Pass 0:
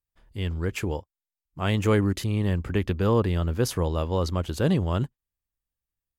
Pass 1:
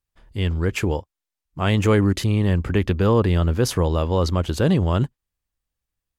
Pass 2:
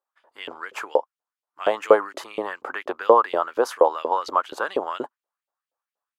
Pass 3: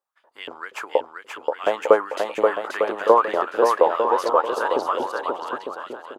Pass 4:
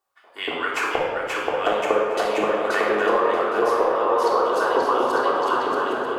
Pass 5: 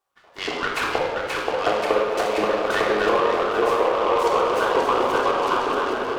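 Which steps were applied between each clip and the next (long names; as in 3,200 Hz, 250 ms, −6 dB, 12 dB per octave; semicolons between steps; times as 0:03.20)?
high-shelf EQ 12,000 Hz −8 dB; in parallel at +1 dB: brickwall limiter −19 dBFS, peak gain reduction 7 dB
flat-topped bell 580 Hz +15 dB 3 octaves; auto-filter high-pass saw up 4.2 Hz 500–3,200 Hz; level −10 dB
bouncing-ball delay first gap 530 ms, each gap 0.7×, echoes 5
downward compressor, threshold −27 dBFS, peak gain reduction 17 dB; rectangular room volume 1,900 cubic metres, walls mixed, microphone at 3.4 metres; level +5 dB
short delay modulated by noise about 1,500 Hz, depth 0.037 ms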